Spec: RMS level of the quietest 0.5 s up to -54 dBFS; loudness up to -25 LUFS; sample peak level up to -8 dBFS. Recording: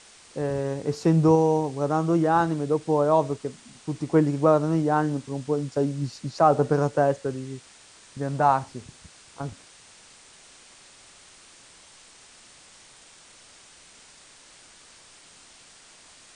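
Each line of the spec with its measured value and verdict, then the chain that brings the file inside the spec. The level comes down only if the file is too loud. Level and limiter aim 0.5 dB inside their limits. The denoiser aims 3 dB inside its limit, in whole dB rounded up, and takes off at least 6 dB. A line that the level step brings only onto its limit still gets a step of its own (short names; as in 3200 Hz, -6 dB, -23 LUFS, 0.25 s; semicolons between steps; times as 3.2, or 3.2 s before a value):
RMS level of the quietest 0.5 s -52 dBFS: fail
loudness -24.0 LUFS: fail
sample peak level -6.0 dBFS: fail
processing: denoiser 6 dB, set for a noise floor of -52 dBFS; gain -1.5 dB; limiter -8.5 dBFS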